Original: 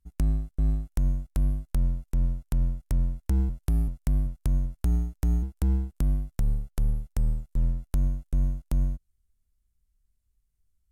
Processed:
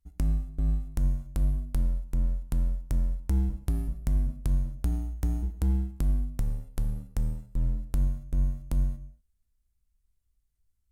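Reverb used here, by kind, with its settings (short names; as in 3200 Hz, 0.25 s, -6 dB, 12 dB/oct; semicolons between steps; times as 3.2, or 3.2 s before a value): non-linear reverb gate 0.26 s falling, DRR 9 dB; gain -2 dB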